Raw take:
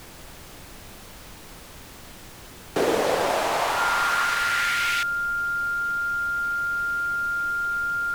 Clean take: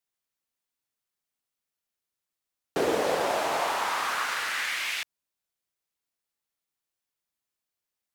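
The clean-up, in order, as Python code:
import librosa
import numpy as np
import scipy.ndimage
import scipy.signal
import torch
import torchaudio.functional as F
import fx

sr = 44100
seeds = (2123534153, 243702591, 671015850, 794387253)

y = fx.notch(x, sr, hz=1400.0, q=30.0)
y = fx.noise_reduce(y, sr, print_start_s=1.53, print_end_s=2.03, reduce_db=30.0)
y = fx.fix_level(y, sr, at_s=2.55, step_db=-3.5)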